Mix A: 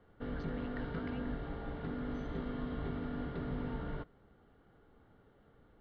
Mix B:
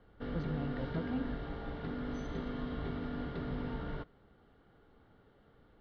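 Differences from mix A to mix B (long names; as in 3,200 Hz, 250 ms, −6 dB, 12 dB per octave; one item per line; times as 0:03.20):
speech: remove high-pass with resonance 1,600 Hz, resonance Q 1.8
background: remove high-frequency loss of the air 180 metres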